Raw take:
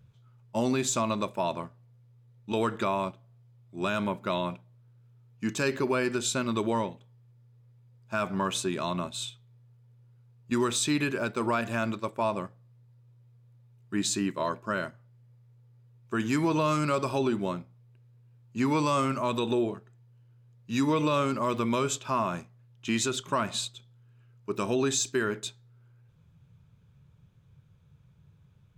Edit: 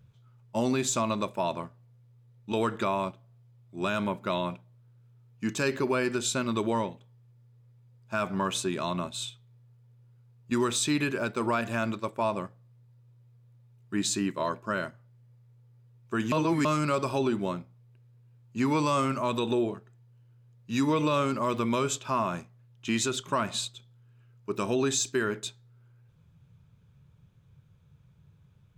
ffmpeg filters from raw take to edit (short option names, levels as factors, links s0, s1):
-filter_complex "[0:a]asplit=3[s0][s1][s2];[s0]atrim=end=16.322[s3];[s1]atrim=start=16.318:end=16.652,asetpts=PTS-STARTPTS,areverse[s4];[s2]atrim=start=16.648[s5];[s3][s4]acrossfade=d=0.004:c1=hsin:c2=hsin[s6];[s6][s5]acrossfade=d=0.004:c1=hsin:c2=hsin"